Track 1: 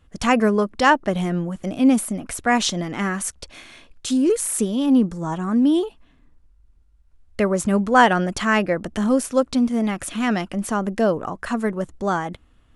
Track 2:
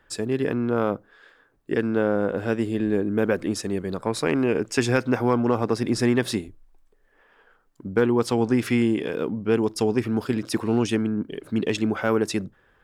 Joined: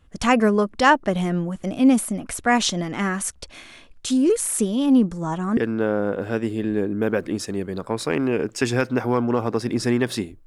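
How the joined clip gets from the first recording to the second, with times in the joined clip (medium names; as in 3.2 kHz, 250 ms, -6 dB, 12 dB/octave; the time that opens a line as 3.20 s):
track 1
5.57 s: go over to track 2 from 1.73 s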